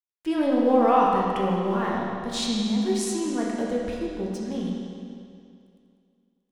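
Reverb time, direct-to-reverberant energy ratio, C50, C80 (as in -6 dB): 2.4 s, -4.0 dB, -1.0 dB, 0.5 dB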